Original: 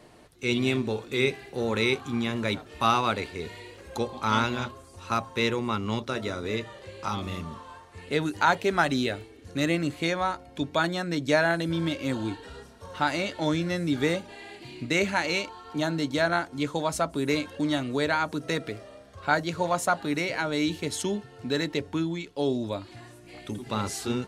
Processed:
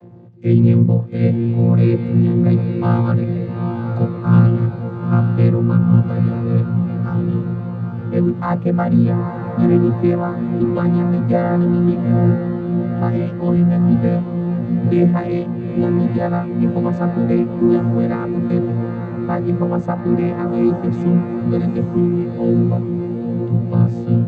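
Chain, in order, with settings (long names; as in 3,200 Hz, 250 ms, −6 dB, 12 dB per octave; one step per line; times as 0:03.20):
channel vocoder with a chord as carrier bare fifth, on A#2
spectral tilt −4 dB per octave
feedback delay with all-pass diffusion 857 ms, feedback 60%, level −5.5 dB
level +4 dB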